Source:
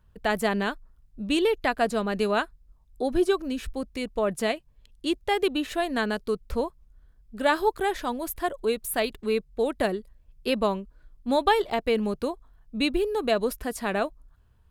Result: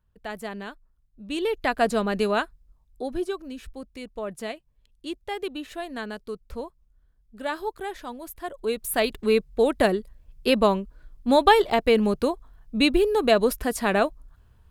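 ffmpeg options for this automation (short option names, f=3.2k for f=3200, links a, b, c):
-af "volume=15dB,afade=t=in:st=1.23:d=0.66:silence=0.237137,afade=t=out:st=1.89:d=1.42:silence=0.316228,afade=t=in:st=8.43:d=0.8:silence=0.251189"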